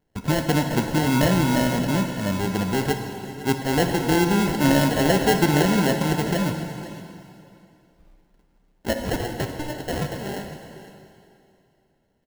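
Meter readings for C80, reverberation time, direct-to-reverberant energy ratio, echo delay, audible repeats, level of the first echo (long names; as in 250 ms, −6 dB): 6.5 dB, 2.7 s, 4.5 dB, 506 ms, 1, −16.0 dB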